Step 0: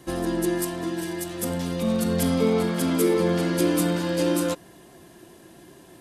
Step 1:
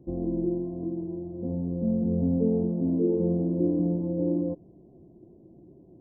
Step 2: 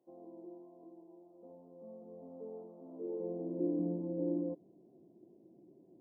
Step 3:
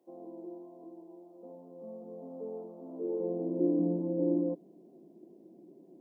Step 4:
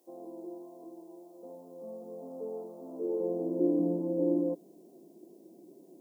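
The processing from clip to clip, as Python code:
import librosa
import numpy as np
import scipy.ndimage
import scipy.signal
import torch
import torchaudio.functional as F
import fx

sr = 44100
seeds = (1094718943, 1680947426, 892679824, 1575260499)

y1 = scipy.ndimage.gaussian_filter1d(x, 17.0, mode='constant')
y2 = fx.filter_sweep_highpass(y1, sr, from_hz=820.0, to_hz=230.0, start_s=2.86, end_s=3.8, q=0.8)
y2 = F.gain(torch.from_numpy(y2), -7.5).numpy()
y3 = scipy.signal.sosfilt(scipy.signal.butter(6, 160.0, 'highpass', fs=sr, output='sos'), y2)
y3 = F.gain(torch.from_numpy(y3), 6.0).numpy()
y4 = fx.bass_treble(y3, sr, bass_db=-6, treble_db=14)
y4 = F.gain(torch.from_numpy(y4), 2.5).numpy()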